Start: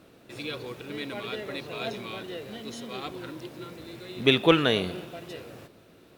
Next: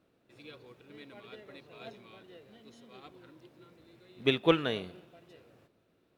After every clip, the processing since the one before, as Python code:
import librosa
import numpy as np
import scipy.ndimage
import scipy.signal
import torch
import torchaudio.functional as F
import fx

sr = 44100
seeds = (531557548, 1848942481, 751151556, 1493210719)

y = fx.high_shelf(x, sr, hz=4300.0, db=-6.0)
y = fx.upward_expand(y, sr, threshold_db=-38.0, expansion=1.5)
y = y * 10.0 ** (-4.0 / 20.0)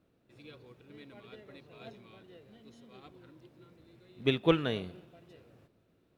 y = fx.low_shelf(x, sr, hz=220.0, db=8.5)
y = fx.rider(y, sr, range_db=10, speed_s=0.5)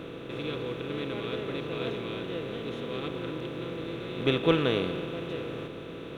y = fx.bin_compress(x, sr, power=0.4)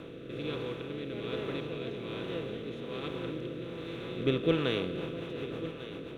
y = fx.rotary_switch(x, sr, hz=1.2, then_hz=7.5, switch_at_s=4.57)
y = y + 10.0 ** (-14.0 / 20.0) * np.pad(y, (int(1149 * sr / 1000.0), 0))[:len(y)]
y = y * 10.0 ** (-1.5 / 20.0)